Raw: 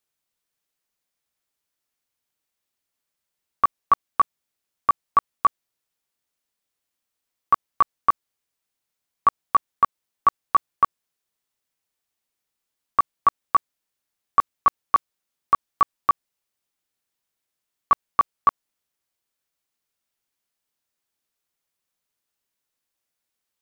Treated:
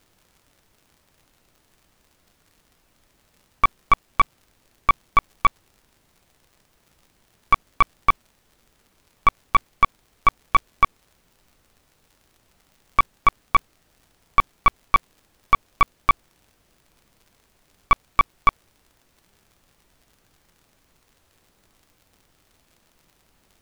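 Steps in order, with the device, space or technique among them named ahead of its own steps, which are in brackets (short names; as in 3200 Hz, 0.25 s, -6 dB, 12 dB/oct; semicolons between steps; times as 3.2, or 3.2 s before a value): record under a worn stylus (tracing distortion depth 0.094 ms; crackle; pink noise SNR 37 dB); gain +1 dB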